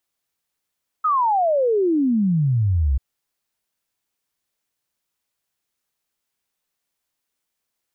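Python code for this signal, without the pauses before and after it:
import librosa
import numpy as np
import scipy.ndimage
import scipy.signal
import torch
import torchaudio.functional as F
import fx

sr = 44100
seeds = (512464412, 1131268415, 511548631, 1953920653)

y = fx.ess(sr, length_s=1.94, from_hz=1300.0, to_hz=62.0, level_db=-15.5)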